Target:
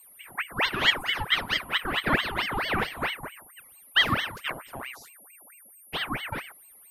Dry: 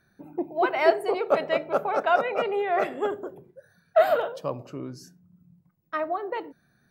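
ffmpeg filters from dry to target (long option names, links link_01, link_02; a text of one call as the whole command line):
ffmpeg -i in.wav -af "aeval=exprs='val(0)+0.00447*sin(2*PI*11000*n/s)':channel_layout=same,aeval=exprs='val(0)*sin(2*PI*1500*n/s+1500*0.75/4.5*sin(2*PI*4.5*n/s))':channel_layout=same" out.wav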